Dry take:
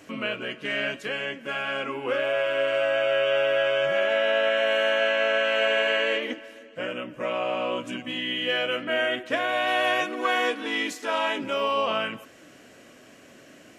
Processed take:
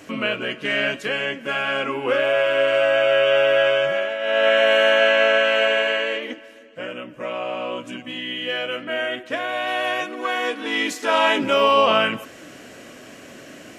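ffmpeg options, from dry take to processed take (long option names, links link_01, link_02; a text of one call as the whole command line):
ffmpeg -i in.wav -af "volume=27dB,afade=type=out:start_time=3.68:duration=0.5:silence=0.281838,afade=type=in:start_time=4.18:duration=0.31:silence=0.251189,afade=type=out:start_time=5.21:duration=0.92:silence=0.446684,afade=type=in:start_time=10.41:duration=0.95:silence=0.354813" out.wav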